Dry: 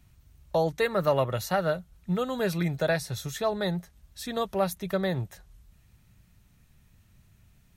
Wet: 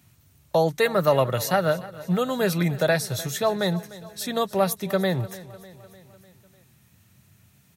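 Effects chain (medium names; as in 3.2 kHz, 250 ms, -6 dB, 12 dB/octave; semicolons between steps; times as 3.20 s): high-pass 95 Hz 24 dB/octave; treble shelf 6.7 kHz +6 dB; feedback delay 300 ms, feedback 58%, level -18 dB; trim +4.5 dB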